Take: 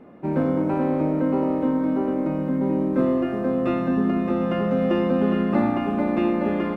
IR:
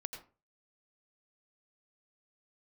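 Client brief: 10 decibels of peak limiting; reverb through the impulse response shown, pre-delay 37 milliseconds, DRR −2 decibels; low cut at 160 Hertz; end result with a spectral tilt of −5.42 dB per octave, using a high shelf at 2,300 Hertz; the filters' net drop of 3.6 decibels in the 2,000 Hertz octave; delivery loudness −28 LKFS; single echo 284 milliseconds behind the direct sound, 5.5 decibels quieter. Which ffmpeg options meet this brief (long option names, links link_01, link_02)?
-filter_complex "[0:a]highpass=160,equalizer=frequency=2000:width_type=o:gain=-3,highshelf=frequency=2300:gain=-3,alimiter=limit=-20dB:level=0:latency=1,aecho=1:1:284:0.531,asplit=2[link_01][link_02];[1:a]atrim=start_sample=2205,adelay=37[link_03];[link_02][link_03]afir=irnorm=-1:irlink=0,volume=3.5dB[link_04];[link_01][link_04]amix=inputs=2:normalize=0,volume=-3.5dB"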